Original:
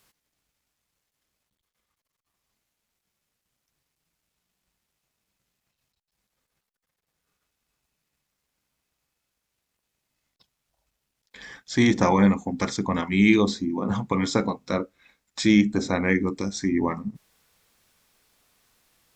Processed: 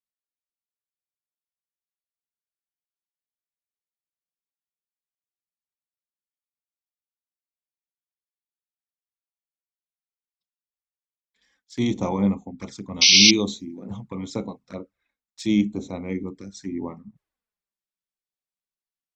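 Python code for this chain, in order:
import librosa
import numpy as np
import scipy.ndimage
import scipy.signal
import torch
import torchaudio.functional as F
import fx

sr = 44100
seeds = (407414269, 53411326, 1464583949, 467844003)

y = fx.env_flanger(x, sr, rest_ms=5.4, full_db=-21.5)
y = fx.spec_paint(y, sr, seeds[0], shape='noise', start_s=13.01, length_s=0.3, low_hz=2100.0, high_hz=6100.0, level_db=-14.0)
y = fx.band_widen(y, sr, depth_pct=70)
y = F.gain(torch.from_numpy(y), -5.0).numpy()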